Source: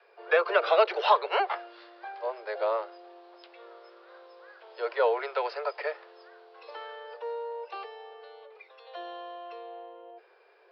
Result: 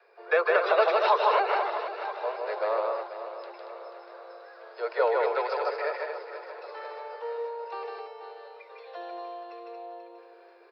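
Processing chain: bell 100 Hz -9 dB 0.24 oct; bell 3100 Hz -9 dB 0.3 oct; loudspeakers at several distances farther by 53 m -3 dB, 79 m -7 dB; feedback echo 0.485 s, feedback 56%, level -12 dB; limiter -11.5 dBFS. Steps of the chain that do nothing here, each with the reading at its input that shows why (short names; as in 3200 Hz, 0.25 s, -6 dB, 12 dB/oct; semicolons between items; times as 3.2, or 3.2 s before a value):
bell 100 Hz: input band starts at 340 Hz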